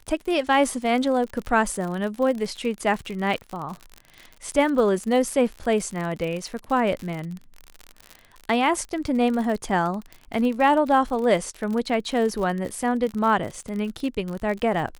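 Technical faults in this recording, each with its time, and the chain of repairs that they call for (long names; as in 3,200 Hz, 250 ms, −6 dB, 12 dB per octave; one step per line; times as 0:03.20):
surface crackle 56 per second −29 dBFS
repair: click removal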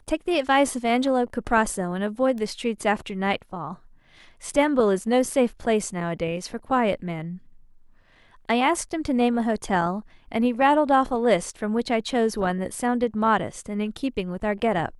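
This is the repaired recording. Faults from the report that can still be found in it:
none of them is left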